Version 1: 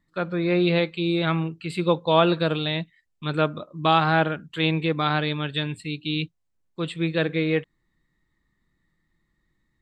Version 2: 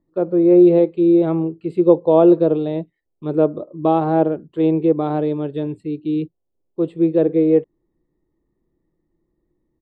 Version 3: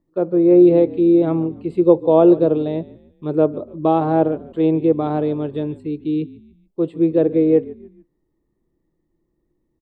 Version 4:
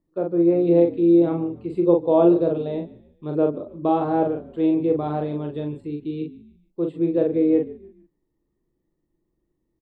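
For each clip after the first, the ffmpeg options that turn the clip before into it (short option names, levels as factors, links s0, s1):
-af "firequalizer=gain_entry='entry(200,0);entry(350,13);entry(1500,-15);entry(3900,-19)':delay=0.05:min_phase=1"
-filter_complex "[0:a]asplit=4[s0][s1][s2][s3];[s1]adelay=146,afreqshift=-43,volume=0.106[s4];[s2]adelay=292,afreqshift=-86,volume=0.0422[s5];[s3]adelay=438,afreqshift=-129,volume=0.017[s6];[s0][s4][s5][s6]amix=inputs=4:normalize=0"
-filter_complex "[0:a]asplit=2[s0][s1];[s1]adelay=41,volume=0.631[s2];[s0][s2]amix=inputs=2:normalize=0,volume=0.531"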